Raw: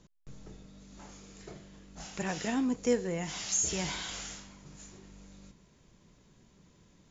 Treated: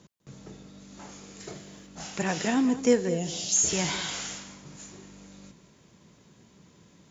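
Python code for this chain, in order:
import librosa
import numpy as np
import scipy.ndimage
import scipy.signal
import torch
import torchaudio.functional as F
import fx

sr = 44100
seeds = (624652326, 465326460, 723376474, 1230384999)

y = fx.high_shelf(x, sr, hz=4700.0, db=8.5, at=(1.4, 1.87))
y = scipy.signal.sosfilt(scipy.signal.butter(2, 99.0, 'highpass', fs=sr, output='sos'), y)
y = fx.band_shelf(y, sr, hz=1400.0, db=-15.5, octaves=1.7, at=(3.08, 3.55), fade=0.02)
y = y + 10.0 ** (-14.5 / 20.0) * np.pad(y, (int(201 * sr / 1000.0), 0))[:len(y)]
y = y * librosa.db_to_amplitude(6.0)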